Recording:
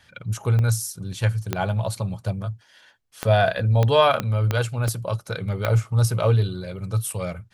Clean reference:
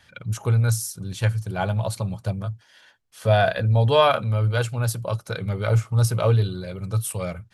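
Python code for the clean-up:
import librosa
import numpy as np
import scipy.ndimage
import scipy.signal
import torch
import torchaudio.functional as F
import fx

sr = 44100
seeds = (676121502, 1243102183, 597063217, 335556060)

y = fx.fix_declick_ar(x, sr, threshold=10.0)
y = fx.fix_interpolate(y, sr, at_s=(0.59, 4.88), length_ms=1.1)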